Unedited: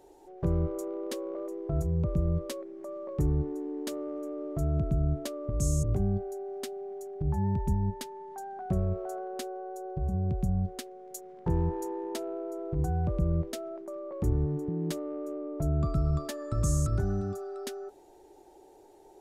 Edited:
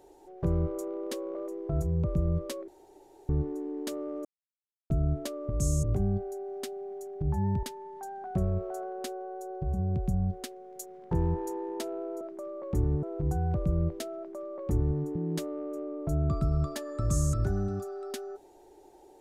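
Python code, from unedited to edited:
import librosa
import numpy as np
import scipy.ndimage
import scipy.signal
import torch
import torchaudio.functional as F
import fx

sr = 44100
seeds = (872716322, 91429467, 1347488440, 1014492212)

y = fx.edit(x, sr, fx.room_tone_fill(start_s=2.68, length_s=0.61),
    fx.silence(start_s=4.25, length_s=0.65),
    fx.cut(start_s=7.63, length_s=0.35),
    fx.duplicate(start_s=13.7, length_s=0.82, to_s=12.56), tone=tone)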